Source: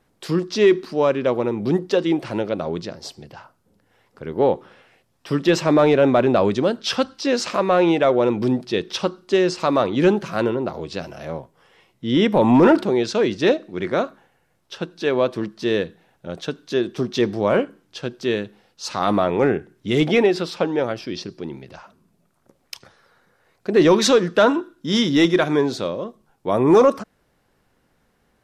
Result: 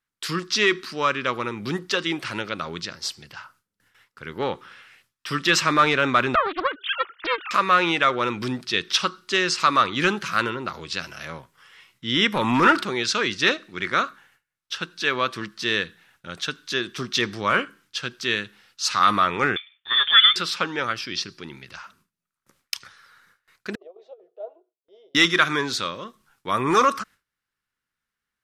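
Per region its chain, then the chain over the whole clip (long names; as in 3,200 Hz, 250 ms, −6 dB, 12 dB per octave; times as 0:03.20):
0:06.35–0:07.51: three sine waves on the formant tracks + highs frequency-modulated by the lows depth 0.95 ms
0:19.56–0:20.36: running median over 9 samples + high-pass filter 480 Hz 24 dB per octave + voice inversion scrambler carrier 3,900 Hz
0:23.75–0:25.15: drawn EQ curve 110 Hz 0 dB, 270 Hz −14 dB, 400 Hz +14 dB, 900 Hz −21 dB, 1,600 Hz −21 dB, 2,900 Hz +1 dB + compressor whose output falls as the input rises −10 dBFS, ratio −0.5 + flat-topped band-pass 710 Hz, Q 4.5
whole clip: dynamic equaliser 1,200 Hz, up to +5 dB, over −39 dBFS, Q 5.9; noise gate with hold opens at −50 dBFS; drawn EQ curve 110 Hz 0 dB, 700 Hz −6 dB, 1,300 Hz +12 dB; level −5.5 dB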